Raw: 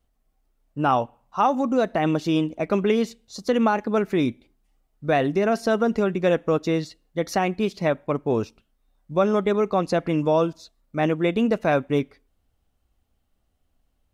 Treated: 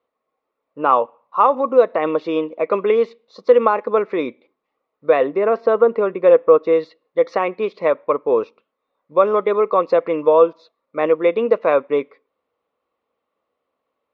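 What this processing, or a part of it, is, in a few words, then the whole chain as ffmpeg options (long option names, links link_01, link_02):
phone earpiece: -filter_complex "[0:a]highpass=480,equalizer=frequency=490:width_type=q:width=4:gain=10,equalizer=frequency=750:width_type=q:width=4:gain=-7,equalizer=frequency=1100:width_type=q:width=4:gain=8,equalizer=frequency=1600:width_type=q:width=4:gain=-8,equalizer=frequency=3000:width_type=q:width=4:gain=-9,lowpass=frequency=3200:width=0.5412,lowpass=frequency=3200:width=1.3066,asettb=1/sr,asplit=3[link_01][link_02][link_03];[link_01]atrim=end=5.244[link_04];[link_02]atrim=start=5.24:end=6.73,asetpts=PTS-STARTPTS,afade=type=in:duration=0.004:curve=qsin,afade=type=out:start_time=1.486:duration=0.004:curve=qsin,aemphasis=mode=reproduction:type=75fm[link_05];[link_03]atrim=start=6.726[link_06];[link_04][link_05]acrossfade=duration=0.004:curve1=hsin:curve2=qsin[link_07];[link_07][link_06]acrossfade=duration=0.004:curve1=qsin:curve2=hsin,volume=5.5dB"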